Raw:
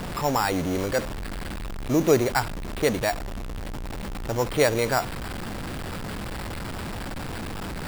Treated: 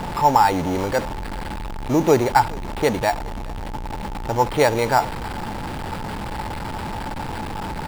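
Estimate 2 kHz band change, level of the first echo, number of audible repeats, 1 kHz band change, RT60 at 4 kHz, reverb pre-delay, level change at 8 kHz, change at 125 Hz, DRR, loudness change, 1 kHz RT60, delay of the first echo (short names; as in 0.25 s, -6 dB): +3.0 dB, -23.5 dB, 1, +10.5 dB, none, none, -0.5 dB, +3.0 dB, none, +5.0 dB, none, 0.417 s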